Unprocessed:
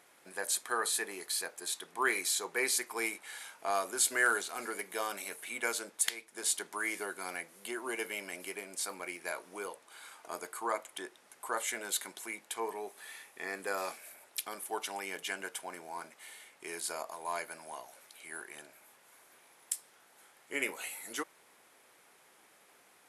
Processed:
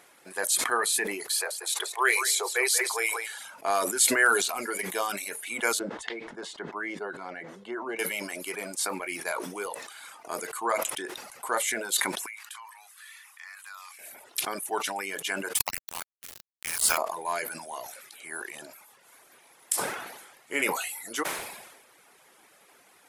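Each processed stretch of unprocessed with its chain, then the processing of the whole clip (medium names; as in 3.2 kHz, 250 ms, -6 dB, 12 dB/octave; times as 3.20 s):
1.32–3.39 s: steep high-pass 380 Hz 72 dB/octave + delay 183 ms -9.5 dB
5.79–7.99 s: tape spacing loss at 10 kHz 32 dB + band-stop 2.4 kHz, Q 8.6
12.26–13.99 s: steep high-pass 1 kHz + compression 2:1, threshold -53 dBFS + transformer saturation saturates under 2.5 kHz
15.55–16.98 s: high-pass 850 Hz + tilt EQ +2.5 dB/octave + word length cut 6-bit, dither none
whole clip: reverb removal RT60 0.74 s; decay stretcher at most 49 dB/s; trim +6.5 dB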